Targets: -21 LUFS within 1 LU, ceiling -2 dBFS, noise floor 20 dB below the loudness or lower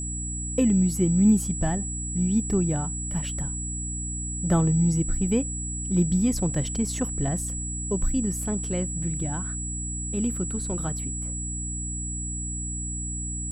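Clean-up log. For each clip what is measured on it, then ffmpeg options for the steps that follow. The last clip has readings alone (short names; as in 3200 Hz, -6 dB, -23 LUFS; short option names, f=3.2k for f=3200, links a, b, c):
hum 60 Hz; harmonics up to 300 Hz; hum level -31 dBFS; steady tone 7800 Hz; tone level -32 dBFS; loudness -26.0 LUFS; peak -10.0 dBFS; loudness target -21.0 LUFS
-> -af "bandreject=f=60:t=h:w=6,bandreject=f=120:t=h:w=6,bandreject=f=180:t=h:w=6,bandreject=f=240:t=h:w=6,bandreject=f=300:t=h:w=6"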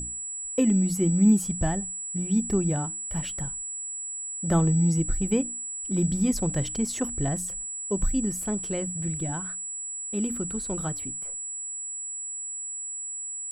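hum none; steady tone 7800 Hz; tone level -32 dBFS
-> -af "bandreject=f=7.8k:w=30"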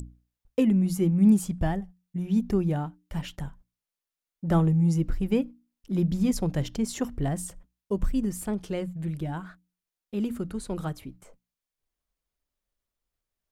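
steady tone none; loudness -27.5 LUFS; peak -11.0 dBFS; loudness target -21.0 LUFS
-> -af "volume=6.5dB"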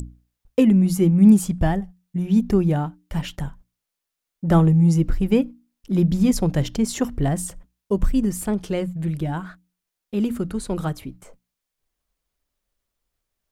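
loudness -21.0 LUFS; peak -4.5 dBFS; noise floor -83 dBFS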